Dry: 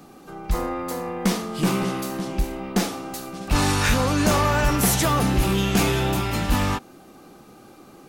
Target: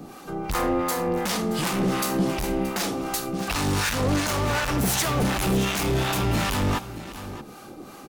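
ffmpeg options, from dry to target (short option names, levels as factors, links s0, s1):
-filter_complex "[0:a]asoftclip=type=hard:threshold=0.0562,acrossover=split=690[s0][s1];[s0]aeval=exprs='val(0)*(1-0.7/2+0.7/2*cos(2*PI*2.7*n/s))':c=same[s2];[s1]aeval=exprs='val(0)*(1-0.7/2-0.7/2*cos(2*PI*2.7*n/s))':c=same[s3];[s2][s3]amix=inputs=2:normalize=0,aecho=1:1:625:0.168,alimiter=limit=0.075:level=0:latency=1:release=367,volume=2.66"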